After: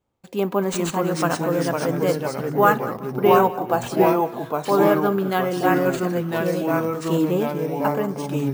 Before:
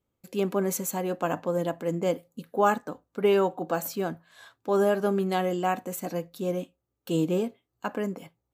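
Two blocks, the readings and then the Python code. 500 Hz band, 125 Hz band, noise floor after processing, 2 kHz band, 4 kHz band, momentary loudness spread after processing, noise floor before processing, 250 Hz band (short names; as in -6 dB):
+6.5 dB, +8.5 dB, -37 dBFS, +9.0 dB, +6.5 dB, 7 LU, -82 dBFS, +8.0 dB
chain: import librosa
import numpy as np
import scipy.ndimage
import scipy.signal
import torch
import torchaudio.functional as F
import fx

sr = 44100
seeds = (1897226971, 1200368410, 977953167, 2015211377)

y = fx.high_shelf(x, sr, hz=7400.0, db=-4.5)
y = fx.echo_pitch(y, sr, ms=354, semitones=-2, count=3, db_per_echo=-3.0)
y = fx.echo_feedback(y, sr, ms=192, feedback_pct=38, wet_db=-18.0)
y = np.repeat(y[::3], 3)[:len(y)]
y = fx.bell_lfo(y, sr, hz=0.25, low_hz=820.0, high_hz=1700.0, db=7)
y = y * 10.0 ** (3.5 / 20.0)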